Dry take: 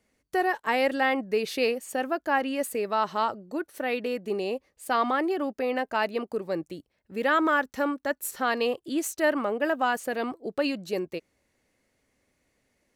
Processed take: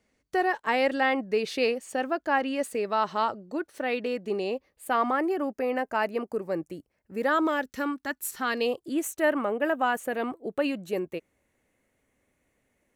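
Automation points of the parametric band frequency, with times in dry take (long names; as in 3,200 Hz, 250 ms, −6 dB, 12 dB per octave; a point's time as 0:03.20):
parametric band −11.5 dB 0.61 octaves
0:04.45 13,000 Hz
0:05.03 3,700 Hz
0:07.16 3,700 Hz
0:07.91 540 Hz
0:08.42 540 Hz
0:08.98 4,800 Hz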